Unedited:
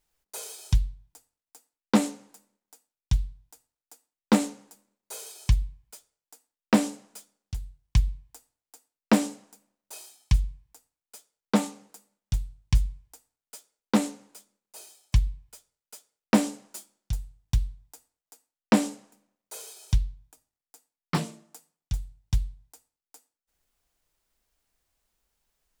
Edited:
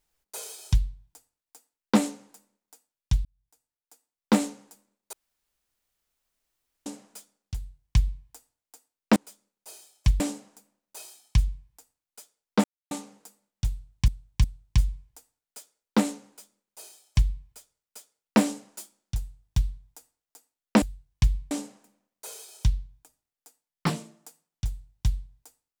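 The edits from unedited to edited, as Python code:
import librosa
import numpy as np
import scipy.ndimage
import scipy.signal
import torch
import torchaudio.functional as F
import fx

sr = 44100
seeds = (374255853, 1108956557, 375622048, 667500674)

y = fx.edit(x, sr, fx.fade_in_span(start_s=3.25, length_s=1.17),
    fx.room_tone_fill(start_s=5.13, length_s=1.73),
    fx.duplicate(start_s=7.55, length_s=0.69, to_s=18.79),
    fx.insert_silence(at_s=11.6, length_s=0.27),
    fx.repeat(start_s=12.41, length_s=0.36, count=3),
    fx.duplicate(start_s=14.24, length_s=1.04, to_s=9.16), tone=tone)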